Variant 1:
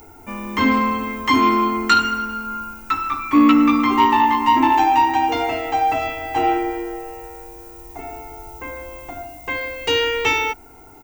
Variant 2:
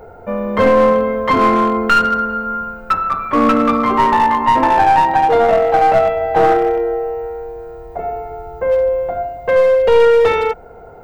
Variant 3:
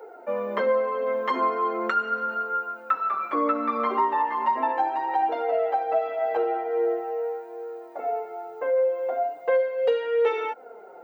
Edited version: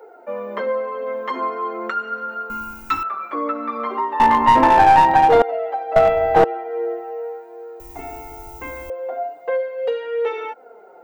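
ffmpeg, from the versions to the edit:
-filter_complex "[0:a]asplit=2[a][b];[1:a]asplit=2[c][d];[2:a]asplit=5[e][f][g][h][i];[e]atrim=end=2.502[j];[a]atrim=start=2.498:end=3.032[k];[f]atrim=start=3.028:end=4.202[l];[c]atrim=start=4.198:end=5.422[m];[g]atrim=start=5.418:end=5.962[n];[d]atrim=start=5.958:end=6.442[o];[h]atrim=start=6.438:end=7.802[p];[b]atrim=start=7.798:end=8.902[q];[i]atrim=start=8.898[r];[j][k]acrossfade=d=0.004:c1=hsin:c2=hsin[s];[s][l]acrossfade=d=0.004:c1=hsin:c2=hsin[t];[t][m]acrossfade=d=0.004:c1=hsin:c2=hsin[u];[u][n]acrossfade=d=0.004:c1=hsin:c2=hsin[v];[v][o]acrossfade=d=0.004:c1=hsin:c2=hsin[w];[w][p]acrossfade=d=0.004:c1=hsin:c2=hsin[x];[x][q]acrossfade=d=0.004:c1=hsin:c2=hsin[y];[y][r]acrossfade=d=0.004:c1=hsin:c2=hsin"

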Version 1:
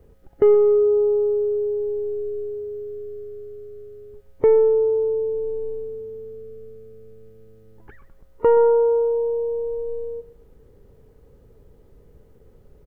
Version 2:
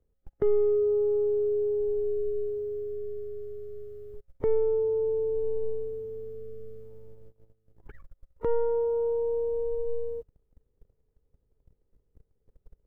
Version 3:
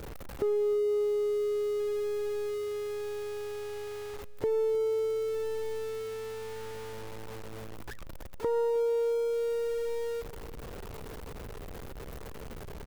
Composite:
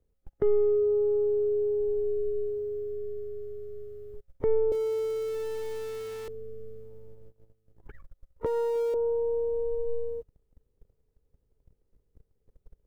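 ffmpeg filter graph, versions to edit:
-filter_complex "[2:a]asplit=2[a][b];[1:a]asplit=3[c][d][e];[c]atrim=end=4.722[f];[a]atrim=start=4.718:end=6.282[g];[d]atrim=start=6.278:end=8.462[h];[b]atrim=start=8.458:end=8.942[i];[e]atrim=start=8.938[j];[f][g]acrossfade=d=0.004:c1=hsin:c2=hsin[k];[k][h]acrossfade=d=0.004:c1=hsin:c2=hsin[l];[l][i]acrossfade=d=0.004:c1=hsin:c2=hsin[m];[m][j]acrossfade=d=0.004:c1=hsin:c2=hsin"

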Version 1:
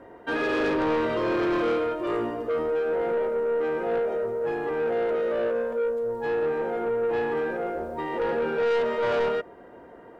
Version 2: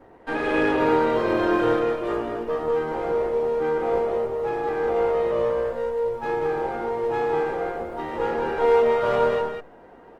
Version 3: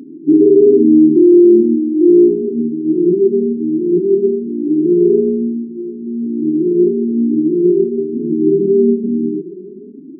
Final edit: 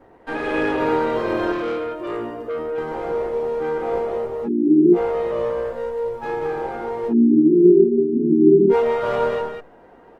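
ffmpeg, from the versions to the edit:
-filter_complex "[2:a]asplit=2[a][b];[1:a]asplit=4[c][d][e][f];[c]atrim=end=1.522[g];[0:a]atrim=start=1.518:end=2.782[h];[d]atrim=start=2.778:end=4.49[i];[a]atrim=start=4.43:end=4.98[j];[e]atrim=start=4.92:end=7.14[k];[b]atrim=start=7.08:end=8.75[l];[f]atrim=start=8.69[m];[g][h]acrossfade=d=0.004:c1=hsin:c2=hsin[n];[n][i]acrossfade=d=0.004:c1=hsin:c2=hsin[o];[o][j]acrossfade=d=0.06:c1=tri:c2=tri[p];[p][k]acrossfade=d=0.06:c1=tri:c2=tri[q];[q][l]acrossfade=d=0.06:c1=tri:c2=tri[r];[r][m]acrossfade=d=0.06:c1=tri:c2=tri"

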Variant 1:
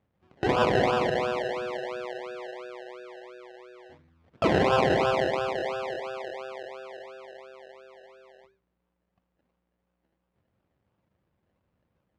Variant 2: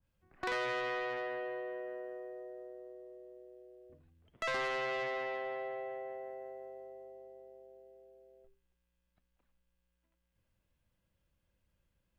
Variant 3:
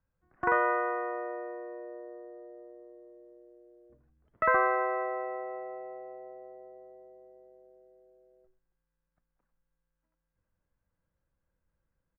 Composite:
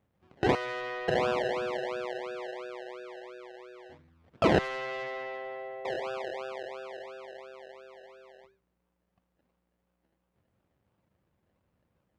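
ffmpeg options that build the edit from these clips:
-filter_complex "[1:a]asplit=2[a][b];[0:a]asplit=3[c][d][e];[c]atrim=end=0.552[f];[a]atrim=start=0.548:end=1.082[g];[d]atrim=start=1.078:end=4.592[h];[b]atrim=start=4.588:end=5.852[i];[e]atrim=start=5.848[j];[f][g]acrossfade=d=0.004:c1=hsin:c2=hsin[k];[k][h]acrossfade=d=0.004:c1=hsin:c2=hsin[l];[l][i]acrossfade=d=0.004:c1=hsin:c2=hsin[m];[m][j]acrossfade=d=0.004:c1=hsin:c2=hsin"

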